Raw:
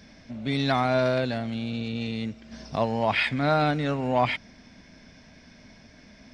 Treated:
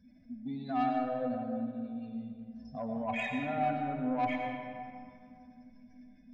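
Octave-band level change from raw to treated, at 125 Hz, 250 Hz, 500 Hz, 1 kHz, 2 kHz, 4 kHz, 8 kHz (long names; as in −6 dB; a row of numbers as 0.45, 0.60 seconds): −15.5 dB, −6.0 dB, −10.5 dB, −5.5 dB, −11.0 dB, −19.0 dB, can't be measured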